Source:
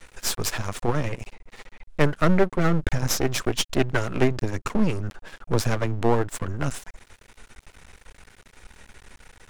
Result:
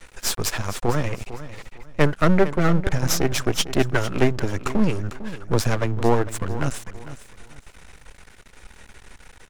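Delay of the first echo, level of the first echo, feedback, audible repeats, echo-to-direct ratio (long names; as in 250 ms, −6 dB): 452 ms, −14.0 dB, 27%, 2, −13.5 dB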